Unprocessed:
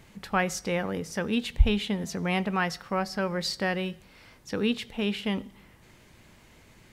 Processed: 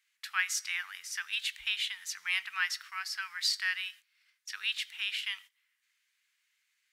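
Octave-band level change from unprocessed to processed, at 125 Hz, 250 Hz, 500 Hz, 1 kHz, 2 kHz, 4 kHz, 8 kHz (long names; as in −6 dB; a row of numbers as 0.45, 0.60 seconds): below −40 dB, below −40 dB, below −40 dB, −12.0 dB, +0.5 dB, +2.0 dB, +2.0 dB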